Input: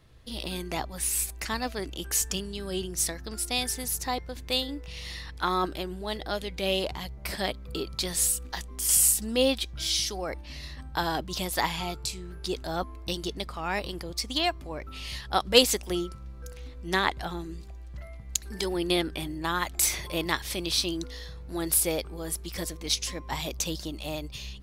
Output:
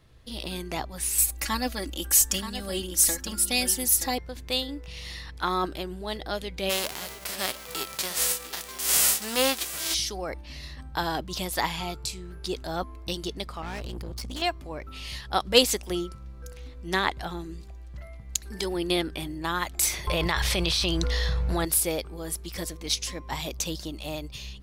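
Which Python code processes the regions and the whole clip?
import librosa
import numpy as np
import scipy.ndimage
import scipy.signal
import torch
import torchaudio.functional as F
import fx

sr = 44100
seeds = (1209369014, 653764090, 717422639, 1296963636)

y = fx.chain(x, sr, fx.high_shelf(hz=8900.0, db=11.0),
    fx.comb(ms=3.6, depth=0.81),
    fx.echo_single(ms=926, db=-10.0), at=(1.18, 4.18))
y = fx.envelope_flatten(y, sr, power=0.3, at=(6.69, 9.93), fade=0.02)
y = fx.highpass(y, sr, hz=180.0, slope=6, at=(6.69, 9.93), fade=0.02)
y = fx.echo_single(y, sr, ms=700, db=-15.5, at=(6.69, 9.93), fade=0.02)
y = fx.chain(y, sr, fx.low_shelf(hz=210.0, db=11.0),
    fx.tube_stage(drive_db=32.0, bias=0.7), at=(13.62, 14.42))
y = fx.chain(y, sr, fx.lowpass(hz=3500.0, slope=6),
    fx.peak_eq(hz=290.0, db=-13.5, octaves=0.71),
    fx.env_flatten(amount_pct=100), at=(20.07, 21.65))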